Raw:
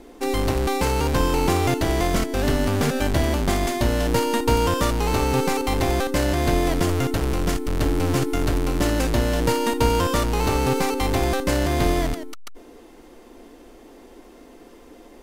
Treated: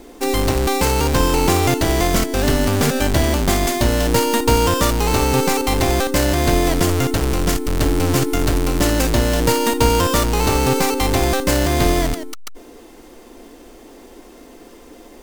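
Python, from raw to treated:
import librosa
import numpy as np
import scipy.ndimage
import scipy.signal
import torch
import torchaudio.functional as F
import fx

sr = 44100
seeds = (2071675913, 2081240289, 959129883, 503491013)

y = fx.high_shelf(x, sr, hz=5800.0, db=9.5)
y = np.repeat(scipy.signal.resample_poly(y, 1, 2), 2)[:len(y)]
y = F.gain(torch.from_numpy(y), 4.0).numpy()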